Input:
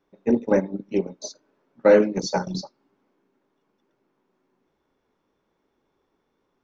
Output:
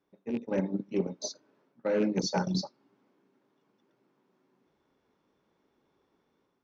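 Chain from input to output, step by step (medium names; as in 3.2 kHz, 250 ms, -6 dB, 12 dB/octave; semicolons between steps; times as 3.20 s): rattle on loud lows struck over -23 dBFS, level -25 dBFS; reverse; compression 12:1, threshold -23 dBFS, peak gain reduction 13.5 dB; reverse; short-mantissa float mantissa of 8-bit; in parallel at -11.5 dB: saturation -27.5 dBFS, distortion -10 dB; on the sum: high-pass 130 Hz 6 dB/octave; level rider gain up to 6 dB; low-pass 5.2 kHz 12 dB/octave; tone controls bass +5 dB, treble +5 dB; trim -9 dB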